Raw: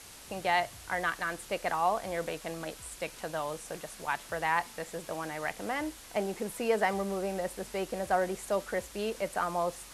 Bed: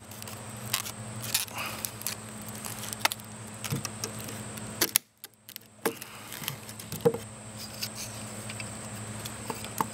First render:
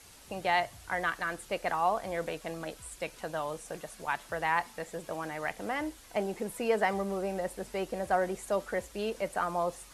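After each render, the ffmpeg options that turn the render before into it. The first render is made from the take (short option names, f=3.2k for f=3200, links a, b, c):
-af "afftdn=nr=6:nf=-50"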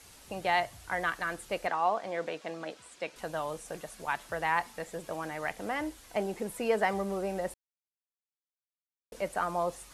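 -filter_complex "[0:a]asettb=1/sr,asplit=3[a][b][c];[a]atrim=end=1.674[d];[b]atrim=start=1.67:end=3.16,asetpts=PTS-STARTPTS,afade=t=in:d=0.004:c=qsin,afade=t=out:st=1.486:d=0.004:c=qsin,highpass=210,lowpass=5.8k[e];[c]atrim=start=3.156[f];[d][e]acrossfade=d=0.004:c1=hsin:c2=qsin[g];[g][f]acrossfade=d=0.004:c1=qsin:c2=hsin,asplit=3[h][i][j];[h]atrim=end=7.54,asetpts=PTS-STARTPTS,afade=t=out:st=7.536:d=0.004:c=hsin[k];[i]atrim=start=7.54:end=9.12,asetpts=PTS-STARTPTS,volume=0[l];[j]atrim=start=9.12,asetpts=PTS-STARTPTS,afade=t=in:d=0.004:c=hsin[m];[k][l][m]concat=n=3:v=0:a=1"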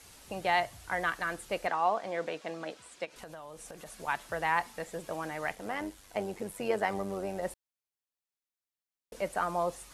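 -filter_complex "[0:a]asplit=3[a][b][c];[a]afade=t=out:st=3.04:d=0.02[d];[b]acompressor=threshold=-42dB:ratio=6:attack=3.2:release=140:knee=1:detection=peak,afade=t=in:st=3.04:d=0.02,afade=t=out:st=3.85:d=0.02[e];[c]afade=t=in:st=3.85:d=0.02[f];[d][e][f]amix=inputs=3:normalize=0,asettb=1/sr,asplit=3[g][h][i];[g]atrim=end=5.554[j];[h]atrim=start=5.55:end=7.43,asetpts=PTS-STARTPTS,afade=t=in:d=0.004:c=qsin,afade=t=out:st=1.876:d=0.004:c=qsin,tremolo=f=97:d=0.571[k];[i]atrim=start=7.426[l];[j][k]acrossfade=d=0.004:c1=hsin:c2=qsin[m];[m][l]acrossfade=d=0.004:c1=qsin:c2=hsin"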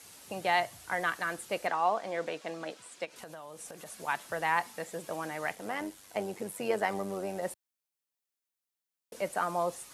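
-af "highpass=120,highshelf=f=6.8k:g=5"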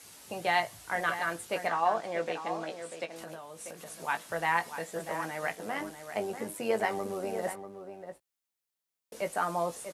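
-filter_complex "[0:a]asplit=2[a][b];[b]adelay=18,volume=-8dB[c];[a][c]amix=inputs=2:normalize=0,asplit=2[d][e];[e]adelay=641.4,volume=-9dB,highshelf=f=4k:g=-14.4[f];[d][f]amix=inputs=2:normalize=0"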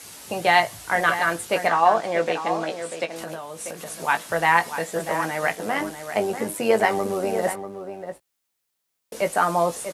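-af "volume=10dB"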